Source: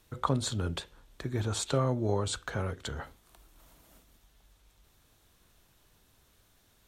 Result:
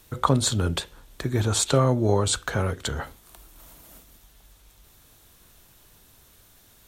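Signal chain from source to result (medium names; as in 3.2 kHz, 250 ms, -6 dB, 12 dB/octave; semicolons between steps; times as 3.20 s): treble shelf 8.7 kHz +8.5 dB; trim +8 dB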